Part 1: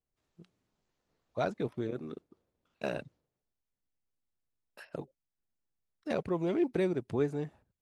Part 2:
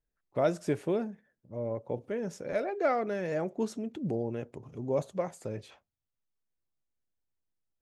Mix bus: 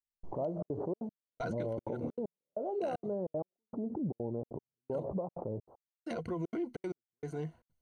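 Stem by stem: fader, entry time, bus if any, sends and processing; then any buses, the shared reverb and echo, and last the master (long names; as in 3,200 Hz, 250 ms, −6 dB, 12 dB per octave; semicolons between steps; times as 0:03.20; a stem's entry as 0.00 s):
−2.0 dB, 0.00 s, no send, EQ curve with evenly spaced ripples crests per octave 1.9, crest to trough 13 dB; brickwall limiter −27 dBFS, peak gain reduction 11 dB
+3.0 dB, 0.00 s, no send, downward compressor 2 to 1, threshold −39 dBFS, peak gain reduction 10 dB; Butterworth low-pass 990 Hz 48 dB per octave; background raised ahead of every attack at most 61 dB per second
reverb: not used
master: gate pattern "...xxxxx.xxx.x." 193 BPM −60 dB; brickwall limiter −26.5 dBFS, peak gain reduction 6 dB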